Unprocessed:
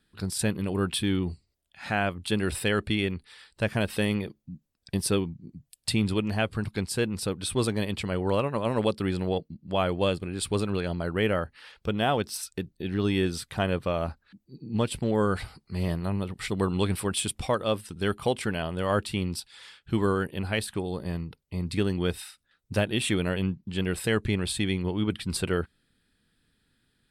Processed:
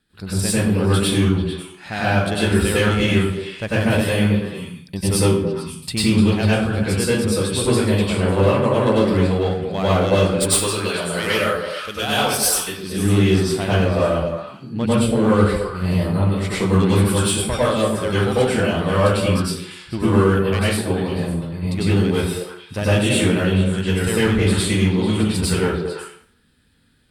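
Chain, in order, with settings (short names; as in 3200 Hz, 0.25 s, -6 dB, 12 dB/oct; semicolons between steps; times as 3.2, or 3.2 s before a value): 10.4–12.83 tilt +3.5 dB/oct; one-sided clip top -21.5 dBFS; delay with a stepping band-pass 0.11 s, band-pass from 180 Hz, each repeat 1.4 oct, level -2 dB; reverb RT60 0.55 s, pre-delay 88 ms, DRR -8.5 dB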